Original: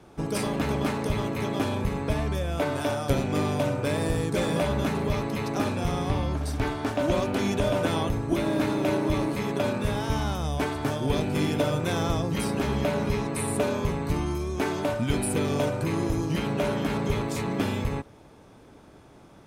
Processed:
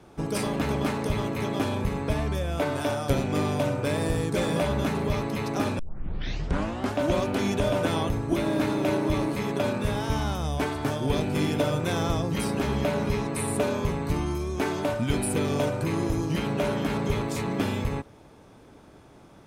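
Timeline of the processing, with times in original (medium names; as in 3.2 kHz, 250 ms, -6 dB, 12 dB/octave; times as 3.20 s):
5.79 s: tape start 1.18 s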